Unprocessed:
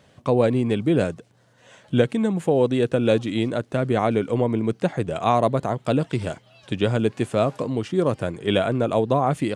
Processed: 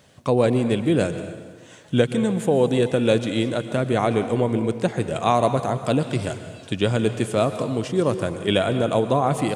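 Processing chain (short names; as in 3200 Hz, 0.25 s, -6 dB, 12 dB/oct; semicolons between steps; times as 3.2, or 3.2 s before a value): high shelf 4900 Hz +9 dB; on a send: reverb RT60 1.5 s, pre-delay 0.113 s, DRR 9.5 dB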